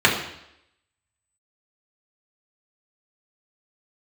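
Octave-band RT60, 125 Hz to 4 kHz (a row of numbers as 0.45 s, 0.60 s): 0.75 s, 0.75 s, 0.80 s, 0.80 s, 0.80 s, 0.80 s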